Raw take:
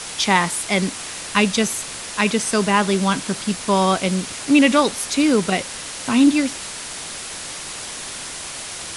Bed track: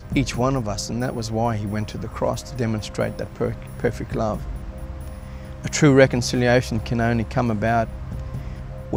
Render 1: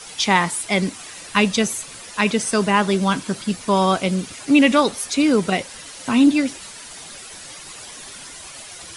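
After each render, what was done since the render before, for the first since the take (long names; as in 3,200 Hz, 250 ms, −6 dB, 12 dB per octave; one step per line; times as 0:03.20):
broadband denoise 10 dB, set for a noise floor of −32 dBFS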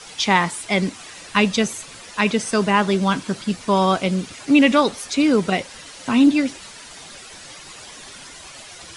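Bessel low-pass filter 7,000 Hz, order 2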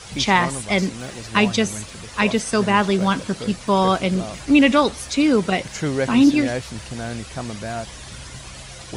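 mix in bed track −9 dB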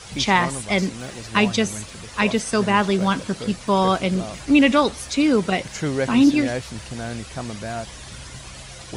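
level −1 dB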